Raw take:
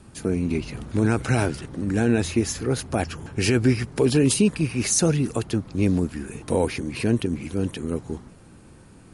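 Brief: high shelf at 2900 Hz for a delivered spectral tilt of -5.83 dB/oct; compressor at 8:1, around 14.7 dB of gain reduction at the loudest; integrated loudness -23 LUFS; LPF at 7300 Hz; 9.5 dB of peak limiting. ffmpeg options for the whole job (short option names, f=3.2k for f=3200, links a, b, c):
-af "lowpass=7.3k,highshelf=f=2.9k:g=-9,acompressor=threshold=-30dB:ratio=8,volume=15.5dB,alimiter=limit=-12dB:level=0:latency=1"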